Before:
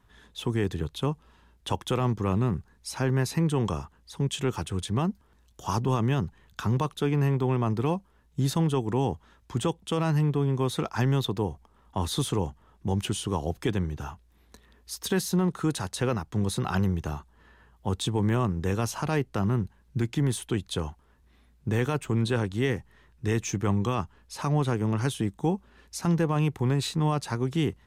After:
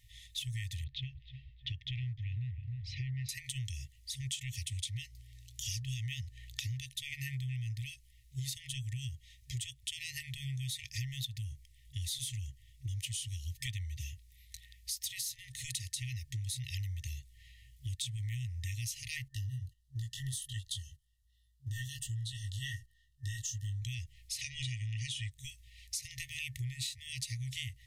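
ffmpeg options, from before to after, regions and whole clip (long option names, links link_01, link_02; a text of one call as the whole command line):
ffmpeg -i in.wav -filter_complex "[0:a]asettb=1/sr,asplit=3[link_01][link_02][link_03];[link_01]atrim=end=0.844[link_04];[link_02]atrim=start=0.84:end=3.29,asetpts=PTS-STARTPTS,afade=type=in:duration=0.004:curve=qsin,afade=type=out:start_time=2.446:duration=0.004:curve=qsin,lowpass=frequency=4200:width=0.5412,lowpass=frequency=4200:width=1.3066,aemphasis=mode=reproduction:type=75kf,asplit=2[link_05][link_06];[link_06]adelay=309,lowpass=frequency=2000:poles=1,volume=-13dB,asplit=2[link_07][link_08];[link_08]adelay=309,lowpass=frequency=2000:poles=1,volume=0.5,asplit=2[link_09][link_10];[link_10]adelay=309,lowpass=frequency=2000:poles=1,volume=0.5,asplit=2[link_11][link_12];[link_12]adelay=309,lowpass=frequency=2000:poles=1,volume=0.5,asplit=2[link_13][link_14];[link_14]adelay=309,lowpass=frequency=2000:poles=1,volume=0.5[link_15];[link_05][link_07][link_09][link_11][link_13][link_15]amix=inputs=6:normalize=0,atrim=end_sample=108045[link_16];[link_03]atrim=start=3.286[link_17];[link_04][link_16]acrossfade=duration=0.004:curve1=hsin:curve2=qsin[link_18];[link_18][link_17]acrossfade=duration=0.004:curve1=qsin:curve2=hsin,asettb=1/sr,asplit=3[link_19][link_20][link_21];[link_19]atrim=end=4.724[link_22];[link_20]atrim=start=4.72:end=6.86,asetpts=PTS-STARTPTS,afade=type=in:duration=0.004:curve=qsin,afade=type=out:start_time=2.136:duration=0.004:curve=qsin,equalizer=frequency=3300:width_type=o:width=2.7:gain=4,aeval=exprs='val(0)+0.00251*(sin(2*PI*60*n/s)+sin(2*PI*2*60*n/s)/2+sin(2*PI*3*60*n/s)/3+sin(2*PI*4*60*n/s)/4+sin(2*PI*5*60*n/s)/5)':channel_layout=same[link_23];[link_21]atrim=start=6.856[link_24];[link_22][link_23]acrossfade=duration=0.004:curve1=hsin:curve2=qsin[link_25];[link_25][link_24]acrossfade=duration=0.004:curve1=qsin:curve2=hsin,asettb=1/sr,asplit=3[link_26][link_27][link_28];[link_26]atrim=end=19.284[link_29];[link_27]atrim=start=19.28:end=23.82,asetpts=PTS-STARTPTS,afade=type=in:duration=0.004:curve=qsin,afade=type=out:start_time=4.536:duration=0.004:curve=qsin,flanger=delay=19:depth=3:speed=1.4,asuperstop=centerf=2300:order=12:qfactor=2.9,agate=range=-11dB:threshold=-53dB:ratio=16:release=100:detection=peak[link_30];[link_28]atrim=start=23.816[link_31];[link_29][link_30]acrossfade=duration=0.004:curve1=hsin:curve2=qsin[link_32];[link_32][link_31]acrossfade=duration=0.004:curve1=qsin:curve2=hsin,asettb=1/sr,asplit=3[link_33][link_34][link_35];[link_33]atrim=end=24.414[link_36];[link_34]atrim=start=24.41:end=25.31,asetpts=PTS-STARTPTS,afade=type=in:duration=0.004:curve=qsin,afade=type=out:start_time=0.896:duration=0.004:curve=qsin,lowpass=frequency=8300:width=0.5412,lowpass=frequency=8300:width=1.3066,equalizer=frequency=2800:width=1.9:gain=7,aecho=1:1:2.1:0.42,atrim=end_sample=39690[link_37];[link_35]atrim=start=25.306[link_38];[link_36][link_37]acrossfade=duration=0.004:curve1=hsin:curve2=qsin[link_39];[link_39][link_38]acrossfade=duration=0.004:curve1=qsin:curve2=hsin,highshelf=frequency=2700:gain=7.5,afftfilt=real='re*(1-between(b*sr/4096,130,1800))':imag='im*(1-between(b*sr/4096,130,1800))':win_size=4096:overlap=0.75,acompressor=threshold=-38dB:ratio=6,volume=1.5dB" out.wav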